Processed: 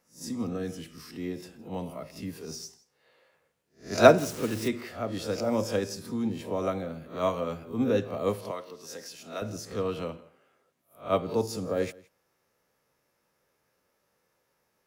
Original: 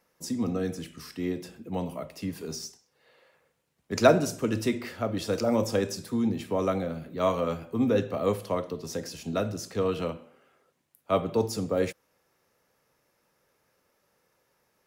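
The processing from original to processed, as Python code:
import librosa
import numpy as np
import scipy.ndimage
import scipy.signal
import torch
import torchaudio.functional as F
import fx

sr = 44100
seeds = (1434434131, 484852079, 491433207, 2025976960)

p1 = fx.spec_swells(x, sr, rise_s=0.31)
p2 = p1 + fx.echo_single(p1, sr, ms=166, db=-22.5, dry=0)
p3 = fx.quant_dither(p2, sr, seeds[0], bits=6, dither='none', at=(4.18, 4.68))
p4 = fx.highpass(p3, sr, hz=790.0, slope=6, at=(8.51, 9.42))
p5 = fx.upward_expand(p4, sr, threshold_db=-26.0, expansion=1.5)
y = F.gain(torch.from_numpy(p5), 2.5).numpy()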